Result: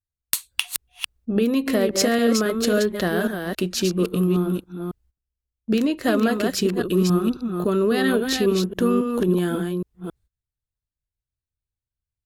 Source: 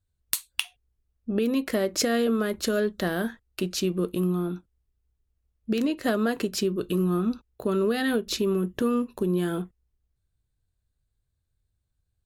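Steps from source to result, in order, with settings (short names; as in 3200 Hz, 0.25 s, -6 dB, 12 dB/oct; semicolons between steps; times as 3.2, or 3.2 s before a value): reverse delay 0.273 s, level -5 dB; gate -56 dBFS, range -18 dB; gain +4 dB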